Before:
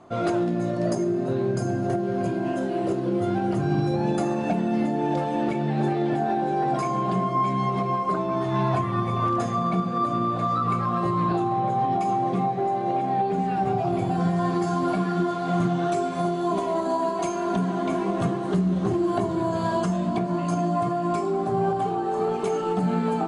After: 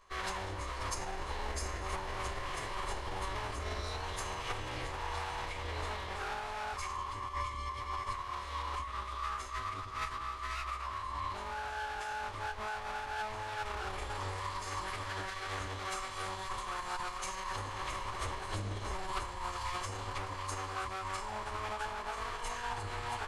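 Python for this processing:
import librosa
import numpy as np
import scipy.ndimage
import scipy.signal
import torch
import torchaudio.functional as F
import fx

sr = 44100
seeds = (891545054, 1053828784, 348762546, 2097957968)

y = fx.lower_of_two(x, sr, delay_ms=0.96)
y = fx.tone_stack(y, sr, knobs='10-0-10')
y = fx.pitch_keep_formants(y, sr, semitones=-10.5)
y = fx.rider(y, sr, range_db=10, speed_s=0.5)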